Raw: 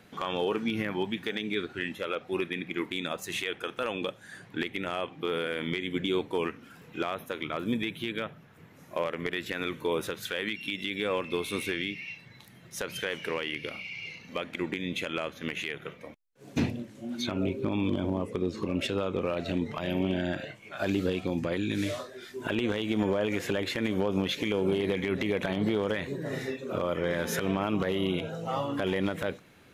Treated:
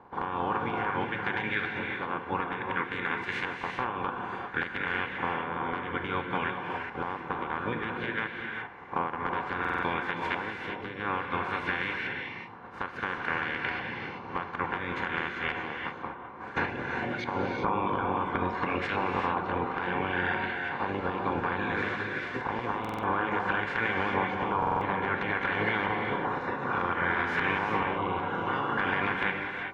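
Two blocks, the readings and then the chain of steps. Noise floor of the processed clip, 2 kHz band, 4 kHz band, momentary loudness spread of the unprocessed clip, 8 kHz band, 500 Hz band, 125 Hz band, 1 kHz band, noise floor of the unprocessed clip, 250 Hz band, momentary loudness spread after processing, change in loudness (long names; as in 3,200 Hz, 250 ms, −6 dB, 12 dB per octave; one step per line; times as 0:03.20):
−42 dBFS, +6.0 dB, −5.5 dB, 8 LU, below −15 dB, −4.0 dB, −2.5 dB, +9.5 dB, −54 dBFS, −5.0 dB, 7 LU, +1.0 dB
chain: ceiling on every frequency bin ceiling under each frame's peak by 24 dB
downward compressor 2 to 1, threshold −41 dBFS, peak gain reduction 10.5 dB
notch comb filter 640 Hz
auto-filter low-pass saw up 0.58 Hz 950–2,000 Hz
reverb whose tail is shaped and stops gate 420 ms rising, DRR 2.5 dB
buffer that repeats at 0:09.60/0:22.80/0:24.58, samples 2,048, times 4
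one half of a high-frequency compander decoder only
level +7 dB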